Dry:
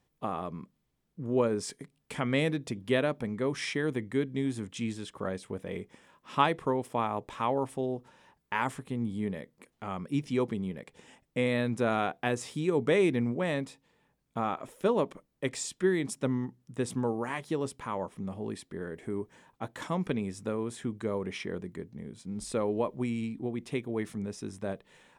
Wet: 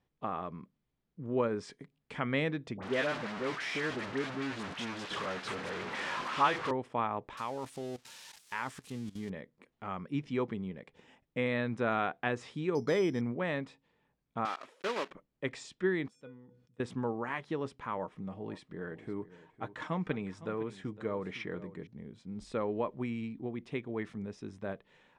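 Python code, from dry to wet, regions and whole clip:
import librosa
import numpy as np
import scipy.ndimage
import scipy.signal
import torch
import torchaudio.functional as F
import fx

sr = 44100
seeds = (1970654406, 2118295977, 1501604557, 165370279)

y = fx.chain(x, sr, fx.delta_mod(bps=64000, step_db=-27.5),
    fx.highpass(hz=250.0, slope=6),
    fx.dispersion(late='highs', ms=61.0, hz=1400.0), at=(2.77, 6.71))
y = fx.chain(y, sr, fx.crossing_spikes(level_db=-30.5),
    fx.high_shelf(hz=4600.0, db=12.0),
    fx.level_steps(step_db=17), at=(7.37, 9.3))
y = fx.chain(y, sr, fx.high_shelf(hz=3600.0, db=-11.0),
    fx.resample_bad(factor=8, down='filtered', up='hold'), at=(12.75, 13.21))
y = fx.chain(y, sr, fx.block_float(bits=3),
    fx.highpass(hz=370.0, slope=12),
    fx.dynamic_eq(hz=600.0, q=0.88, threshold_db=-42.0, ratio=4.0, max_db=-5), at=(14.45, 15.11))
y = fx.chain(y, sr, fx.comb_fb(f0_hz=490.0, decay_s=0.25, harmonics='odd', damping=0.0, mix_pct=90),
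    fx.sustainer(db_per_s=62.0), at=(16.08, 16.8))
y = fx.chain(y, sr, fx.comb(ms=6.5, depth=0.34),
    fx.echo_single(ms=509, db=-15.5), at=(17.97, 21.87))
y = scipy.signal.sosfilt(scipy.signal.butter(2, 4200.0, 'lowpass', fs=sr, output='sos'), y)
y = fx.dynamic_eq(y, sr, hz=1500.0, q=0.97, threshold_db=-47.0, ratio=4.0, max_db=5)
y = y * librosa.db_to_amplitude(-4.5)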